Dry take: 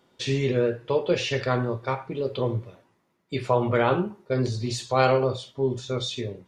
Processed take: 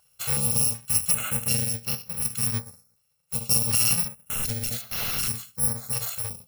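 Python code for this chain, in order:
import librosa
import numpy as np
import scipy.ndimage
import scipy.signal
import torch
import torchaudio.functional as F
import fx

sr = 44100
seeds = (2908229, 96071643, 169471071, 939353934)

y = fx.bit_reversed(x, sr, seeds[0], block=128)
y = fx.overflow_wrap(y, sr, gain_db=21.5, at=(4.04, 5.28))
y = fx.filter_held_notch(y, sr, hz=2.7, low_hz=230.0, high_hz=8000.0)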